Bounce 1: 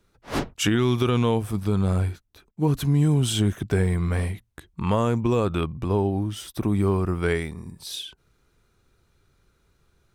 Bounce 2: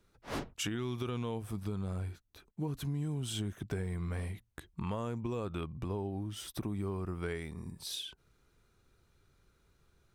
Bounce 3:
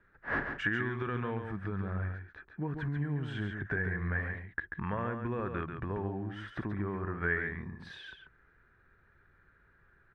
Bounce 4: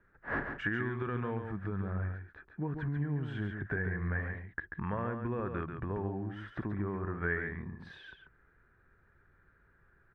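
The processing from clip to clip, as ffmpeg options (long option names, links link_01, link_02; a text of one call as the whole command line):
ffmpeg -i in.wav -af "acompressor=threshold=-32dB:ratio=3,volume=-4.5dB" out.wav
ffmpeg -i in.wav -af "lowpass=frequency=1700:width_type=q:width=9.8,aecho=1:1:139:0.473" out.wav
ffmpeg -i in.wav -af "highshelf=frequency=2700:gain=-10" out.wav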